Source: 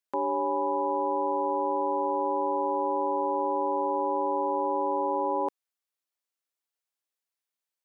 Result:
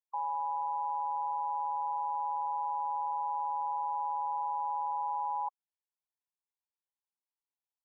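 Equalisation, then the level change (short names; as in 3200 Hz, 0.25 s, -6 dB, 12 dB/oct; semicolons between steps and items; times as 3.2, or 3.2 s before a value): elliptic high-pass 790 Hz, stop band 60 dB; brick-wall FIR low-pass 1100 Hz; -3.0 dB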